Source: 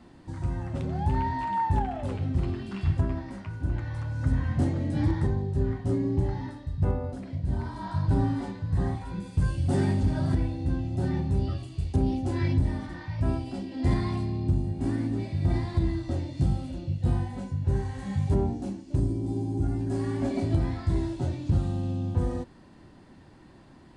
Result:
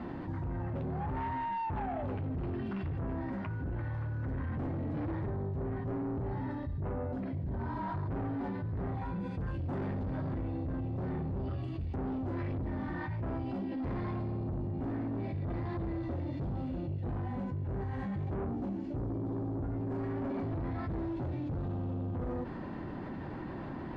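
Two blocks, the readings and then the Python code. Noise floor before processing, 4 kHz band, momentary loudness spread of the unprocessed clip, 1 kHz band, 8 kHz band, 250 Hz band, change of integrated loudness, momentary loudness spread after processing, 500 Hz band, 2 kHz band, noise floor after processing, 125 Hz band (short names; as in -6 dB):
-52 dBFS, under -10 dB, 7 LU, -5.0 dB, n/a, -6.0 dB, -8.0 dB, 2 LU, -5.0 dB, -4.5 dB, -40 dBFS, -9.0 dB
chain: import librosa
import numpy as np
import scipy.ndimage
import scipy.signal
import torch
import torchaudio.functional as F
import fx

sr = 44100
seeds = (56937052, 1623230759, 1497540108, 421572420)

y = fx.low_shelf(x, sr, hz=72.0, db=-7.0)
y = 10.0 ** (-31.5 / 20.0) * np.tanh(y / 10.0 ** (-31.5 / 20.0))
y = scipy.signal.sosfilt(scipy.signal.butter(2, 1900.0, 'lowpass', fs=sr, output='sos'), y)
y = fx.env_flatten(y, sr, amount_pct=70)
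y = y * 10.0 ** (-2.0 / 20.0)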